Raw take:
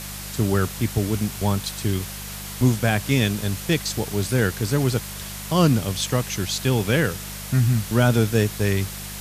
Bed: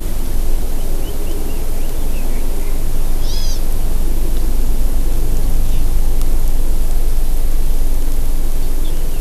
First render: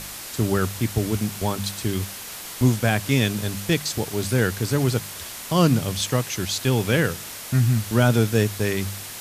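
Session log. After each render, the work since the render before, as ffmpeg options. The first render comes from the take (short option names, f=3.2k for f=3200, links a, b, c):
-af "bandreject=f=50:t=h:w=4,bandreject=f=100:t=h:w=4,bandreject=f=150:t=h:w=4,bandreject=f=200:t=h:w=4"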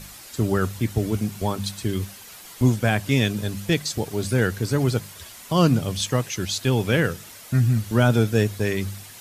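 -af "afftdn=nr=9:nf=-36"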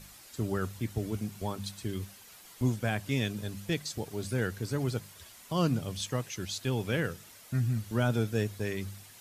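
-af "volume=-10dB"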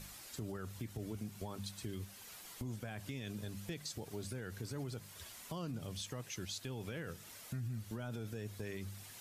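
-af "alimiter=level_in=2.5dB:limit=-24dB:level=0:latency=1:release=43,volume=-2.5dB,acompressor=threshold=-45dB:ratio=2"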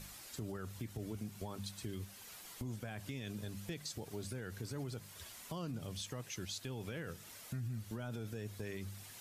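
-af anull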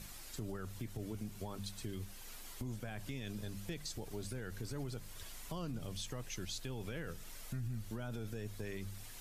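-filter_complex "[1:a]volume=-40dB[a];[0:a][a]amix=inputs=2:normalize=0"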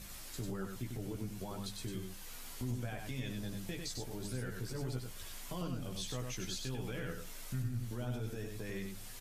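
-filter_complex "[0:a]asplit=2[a][b];[b]adelay=16,volume=-5dB[c];[a][c]amix=inputs=2:normalize=0,aecho=1:1:97:0.596"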